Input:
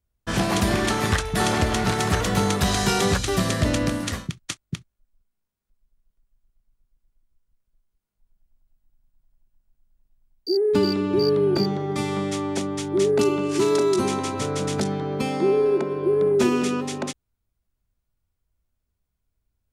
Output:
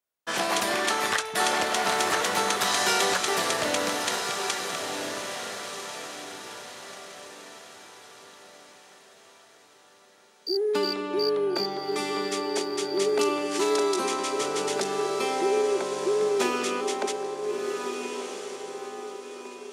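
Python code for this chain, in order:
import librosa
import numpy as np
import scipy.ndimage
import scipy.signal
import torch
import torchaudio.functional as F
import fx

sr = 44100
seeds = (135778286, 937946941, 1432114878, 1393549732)

y = scipy.signal.sosfilt(scipy.signal.butter(2, 510.0, 'highpass', fs=sr, output='sos'), x)
y = fx.echo_diffused(y, sr, ms=1400, feedback_pct=42, wet_db=-5.5)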